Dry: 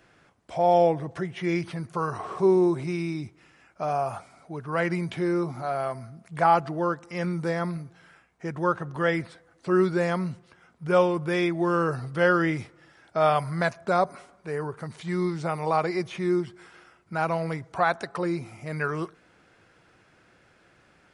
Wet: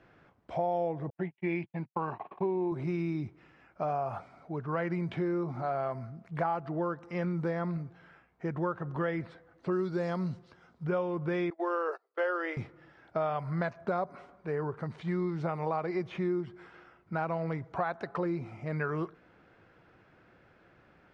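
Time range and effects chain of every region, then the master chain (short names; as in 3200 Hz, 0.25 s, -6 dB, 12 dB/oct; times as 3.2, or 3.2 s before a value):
1.1–2.72 block floating point 7-bit + gate -34 dBFS, range -58 dB + speaker cabinet 130–4000 Hz, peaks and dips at 140 Hz -5 dB, 450 Hz -7 dB, 860 Hz +7 dB, 1300 Hz -10 dB, 2500 Hz +9 dB
9.72–10.85 block floating point 7-bit + resonant high shelf 3300 Hz +7.5 dB, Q 1.5
11.5–12.57 steep high-pass 380 Hz 48 dB/oct + gate -38 dBFS, range -29 dB
whole clip: LPF 4700 Hz 12 dB/oct; high shelf 2600 Hz -11 dB; compressor 6:1, threshold -28 dBFS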